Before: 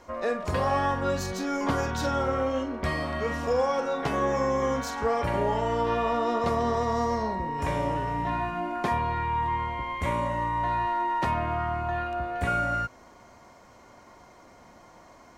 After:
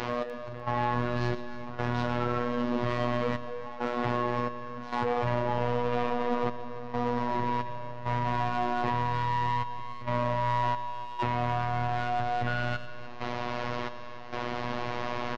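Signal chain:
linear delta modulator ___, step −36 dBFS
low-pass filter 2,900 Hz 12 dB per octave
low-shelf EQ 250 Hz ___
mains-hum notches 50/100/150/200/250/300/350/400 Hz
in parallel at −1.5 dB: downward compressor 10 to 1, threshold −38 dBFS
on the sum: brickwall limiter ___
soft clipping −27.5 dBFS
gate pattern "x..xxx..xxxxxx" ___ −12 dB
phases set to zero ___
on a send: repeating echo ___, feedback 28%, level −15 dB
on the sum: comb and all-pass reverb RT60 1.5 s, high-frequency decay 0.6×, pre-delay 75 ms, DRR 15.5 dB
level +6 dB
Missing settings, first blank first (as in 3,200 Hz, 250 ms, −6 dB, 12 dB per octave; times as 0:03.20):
32 kbit/s, +4 dB, −20.5 dBFS, 67 BPM, 121 Hz, 299 ms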